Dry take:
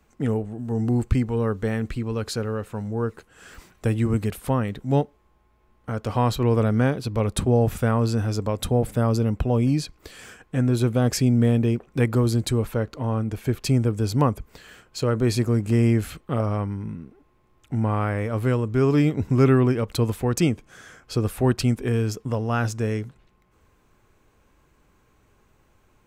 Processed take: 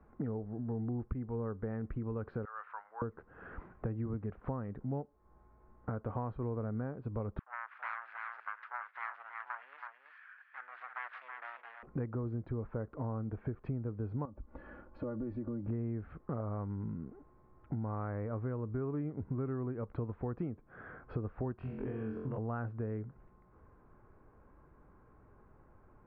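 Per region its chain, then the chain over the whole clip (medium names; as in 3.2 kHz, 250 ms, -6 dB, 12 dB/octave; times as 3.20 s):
2.45–3.02 s: high-pass 1.1 kHz 24 dB/octave + waveshaping leveller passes 1
7.39–11.83 s: self-modulated delay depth 0.95 ms + high-pass 1.5 kHz 24 dB/octave + delay 325 ms -7 dB
14.25–15.68 s: compression 4:1, threshold -31 dBFS + peaking EQ 2.1 kHz -7 dB 2.1 oct + comb 3.5 ms, depth 99%
21.56–22.38 s: compression 2.5:1, threshold -31 dBFS + peaking EQ 2.9 kHz +10 dB 0.63 oct + flutter echo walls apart 3.9 m, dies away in 0.62 s
whole clip: inverse Chebyshev low-pass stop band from 8 kHz, stop band 80 dB; compression 6:1, threshold -36 dBFS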